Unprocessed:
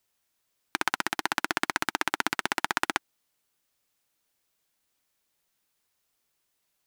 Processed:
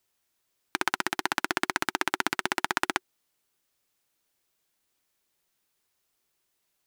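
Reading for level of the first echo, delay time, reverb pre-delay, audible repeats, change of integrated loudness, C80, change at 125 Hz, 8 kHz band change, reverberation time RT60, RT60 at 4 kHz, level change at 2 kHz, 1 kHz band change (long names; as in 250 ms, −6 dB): no echo audible, no echo audible, no reverb audible, no echo audible, 0.0 dB, no reverb audible, 0.0 dB, 0.0 dB, no reverb audible, no reverb audible, 0.0 dB, 0.0 dB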